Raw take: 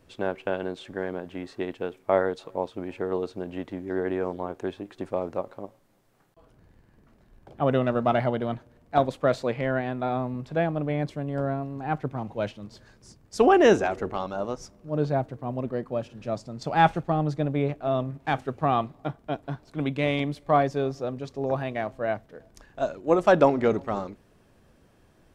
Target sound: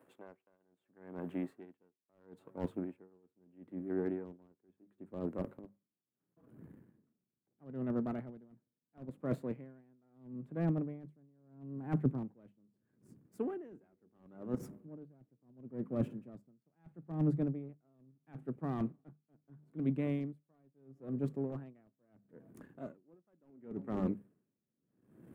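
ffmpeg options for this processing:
-filter_complex "[0:a]aeval=exprs='if(lt(val(0),0),0.447*val(0),val(0))':c=same,highpass=93,acrossover=split=160 2100:gain=0.0794 1 0.112[a][b][c];[a][b][c]amix=inputs=3:normalize=0,bandreject=f=50:t=h:w=6,bandreject=f=100:t=h:w=6,bandreject=f=150:t=h:w=6,bandreject=f=200:t=h:w=6,areverse,acompressor=threshold=-37dB:ratio=12,areverse,aexciter=amount=4.1:drive=8.6:freq=7.7k,volume=31dB,asoftclip=hard,volume=-31dB,asubboost=boost=8.5:cutoff=250,aeval=exprs='val(0)*pow(10,-36*(0.5-0.5*cos(2*PI*0.75*n/s))/20)':c=same,volume=1.5dB"

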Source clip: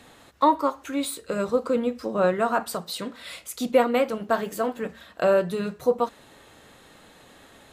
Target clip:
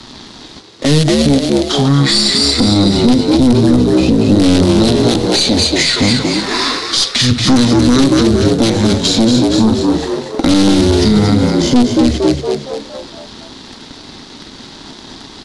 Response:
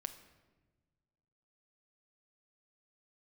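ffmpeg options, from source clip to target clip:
-filter_complex "[0:a]asplit=2[a][b];[b]acrusher=bits=4:dc=4:mix=0:aa=0.000001,volume=-9.5dB[c];[a][c]amix=inputs=2:normalize=0,acrossover=split=370|3000[d][e][f];[e]acompressor=threshold=-31dB:ratio=6[g];[d][g][f]amix=inputs=3:normalize=0,aeval=exprs='sgn(val(0))*max(abs(val(0))-0.002,0)':c=same,equalizer=f=250:t=o:w=1:g=-6,equalizer=f=500:t=o:w=1:g=8,equalizer=f=1k:t=o:w=1:g=-8,equalizer=f=4k:t=o:w=1:g=-7,equalizer=f=8k:t=o:w=1:g=11,aeval=exprs='(tanh(12.6*val(0)+0.5)-tanh(0.5))/12.6':c=same,asplit=2[h][i];[i]asplit=6[j][k][l][m][n][o];[j]adelay=116,afreqshift=140,volume=-6.5dB[p];[k]adelay=232,afreqshift=280,volume=-12.7dB[q];[l]adelay=348,afreqshift=420,volume=-18.9dB[r];[m]adelay=464,afreqshift=560,volume=-25.1dB[s];[n]adelay=580,afreqshift=700,volume=-31.3dB[t];[o]adelay=696,afreqshift=840,volume=-37.5dB[u];[p][q][r][s][t][u]amix=inputs=6:normalize=0[v];[h][v]amix=inputs=2:normalize=0,asetrate=22050,aresample=44100,alimiter=level_in=25dB:limit=-1dB:release=50:level=0:latency=1,volume=-1dB"

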